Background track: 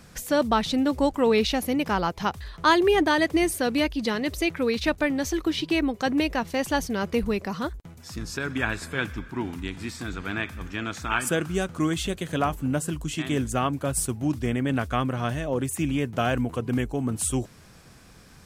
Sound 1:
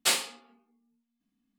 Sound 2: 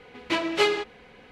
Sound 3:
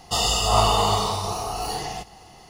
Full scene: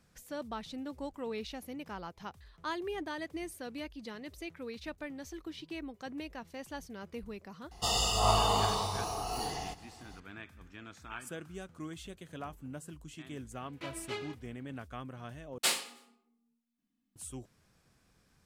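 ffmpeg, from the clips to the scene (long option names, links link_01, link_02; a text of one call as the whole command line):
ffmpeg -i bed.wav -i cue0.wav -i cue1.wav -i cue2.wav -filter_complex "[0:a]volume=-18dB[link_01];[1:a]aecho=1:1:104|208|312:0.0668|0.0348|0.0181[link_02];[link_01]asplit=2[link_03][link_04];[link_03]atrim=end=15.584[link_05];[link_02]atrim=end=1.58,asetpts=PTS-STARTPTS,volume=-4.5dB[link_06];[link_04]atrim=start=17.156[link_07];[3:a]atrim=end=2.49,asetpts=PTS-STARTPTS,volume=-8dB,afade=type=in:duration=0.004:curve=hsin,afade=type=out:start_time=2.486:duration=0.004:curve=hsin,adelay=7710[link_08];[2:a]atrim=end=1.31,asetpts=PTS-STARTPTS,volume=-18dB,afade=type=in:duration=0.004:curve=hsin,afade=type=out:start_time=1.306:duration=0.004:curve=hsin,adelay=13510[link_09];[link_05][link_06]acrossfade=duration=0.004:curve1=hsin:curve2=hsin[link_10];[link_10][link_07]acrossfade=duration=0.004:curve1=hsin:curve2=hsin[link_11];[link_11][link_08][link_09]amix=inputs=3:normalize=0" out.wav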